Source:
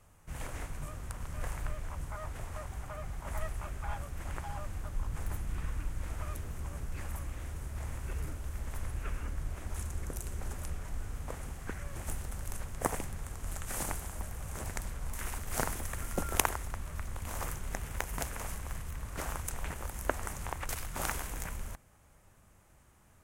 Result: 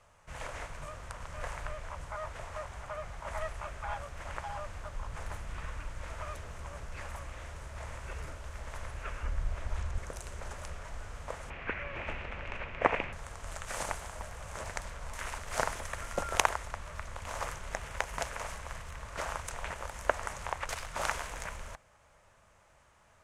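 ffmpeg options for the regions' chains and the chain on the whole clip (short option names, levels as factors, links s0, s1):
-filter_complex "[0:a]asettb=1/sr,asplit=3[s0][s1][s2];[s0]atrim=end=9.234[s3];[s1]atrim=start=9.23:end=9.98,asetpts=PTS-STARTPTS,afade=t=in:d=0.004:c=qsin,afade=t=out:st=0.746:d=0.004:c=qsin,acrossover=split=5200[s4][s5];[s5]acompressor=threshold=0.00158:ratio=4:attack=1:release=60[s6];[s4][s6]amix=inputs=2:normalize=0,lowshelf=f=95:g=11[s7];[s2]atrim=start=9.976[s8];[s3][s7]acrossfade=d=0.004:c1=hsin:c2=qsin[s9];[s9][s8]acrossfade=d=0.004:c1=qsin:c2=hsin,asettb=1/sr,asplit=3[s10][s11][s12];[s10]atrim=end=11.504[s13];[s11]atrim=start=11.5:end=13.13,asetpts=PTS-STARTPTS,afade=t=in:d=0.004:c=qsin,afade=t=out:st=1.626:d=0.004:c=qsin,lowpass=f=2500:t=q:w=4.2,equalizer=f=300:t=o:w=1.4:g=8[s14];[s12]atrim=start=13.126[s15];[s13][s14]acrossfade=d=0.004:c1=hsin:c2=qsin[s16];[s16][s15]acrossfade=d=0.004:c1=qsin:c2=hsin,lowpass=6200,lowshelf=f=430:t=q:w=1.5:g=-8.5,bandreject=f=770:w=12,volume=1.5"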